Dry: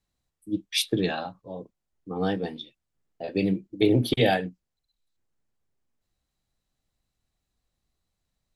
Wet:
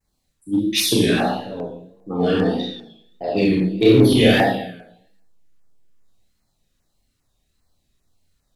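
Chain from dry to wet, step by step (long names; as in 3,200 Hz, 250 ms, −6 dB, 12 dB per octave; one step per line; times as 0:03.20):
four-comb reverb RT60 0.79 s, combs from 26 ms, DRR −5 dB
in parallel at −7 dB: hard clipping −19 dBFS, distortion −7 dB
on the sum: pitch vibrato 1.6 Hz 88 cents
auto-filter notch saw down 2.5 Hz 580–3,900 Hz
level +1.5 dB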